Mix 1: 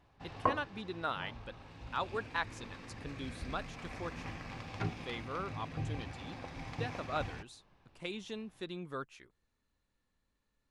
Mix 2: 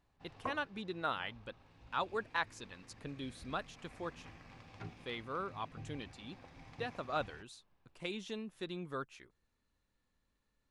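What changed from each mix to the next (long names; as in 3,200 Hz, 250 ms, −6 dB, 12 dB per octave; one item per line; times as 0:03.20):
background −11.0 dB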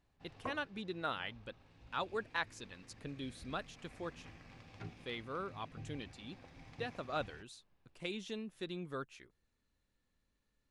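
master: add parametric band 1,000 Hz −4 dB 0.99 octaves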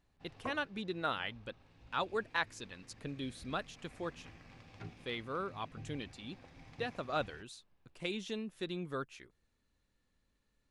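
speech +3.0 dB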